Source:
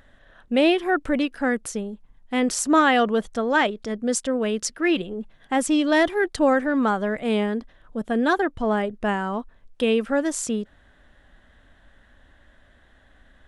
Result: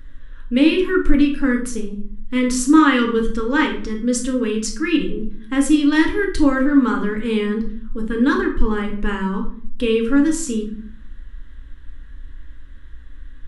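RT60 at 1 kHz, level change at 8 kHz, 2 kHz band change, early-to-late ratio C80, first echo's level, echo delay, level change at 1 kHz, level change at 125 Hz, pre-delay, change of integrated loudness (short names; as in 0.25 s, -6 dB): 0.50 s, +1.5 dB, +2.0 dB, 12.5 dB, none, none, -1.5 dB, +6.5 dB, 3 ms, +4.0 dB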